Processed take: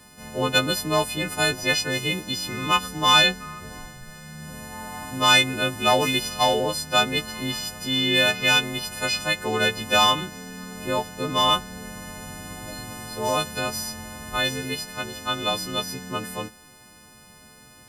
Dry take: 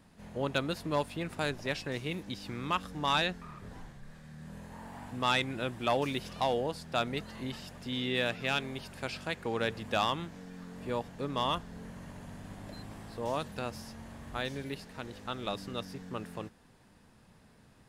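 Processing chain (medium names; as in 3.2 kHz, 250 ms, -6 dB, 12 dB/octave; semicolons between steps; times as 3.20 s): partials quantised in pitch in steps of 3 st; trim +8.5 dB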